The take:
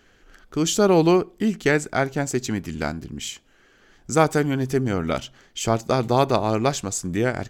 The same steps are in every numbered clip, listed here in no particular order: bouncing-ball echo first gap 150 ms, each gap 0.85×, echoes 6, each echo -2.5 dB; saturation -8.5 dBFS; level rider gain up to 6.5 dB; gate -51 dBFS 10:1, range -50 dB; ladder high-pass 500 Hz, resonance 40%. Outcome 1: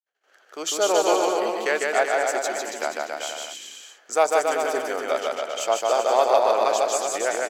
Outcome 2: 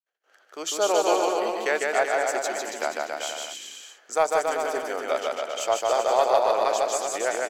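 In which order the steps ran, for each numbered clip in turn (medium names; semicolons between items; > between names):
saturation > bouncing-ball echo > gate > ladder high-pass > level rider; level rider > gate > ladder high-pass > saturation > bouncing-ball echo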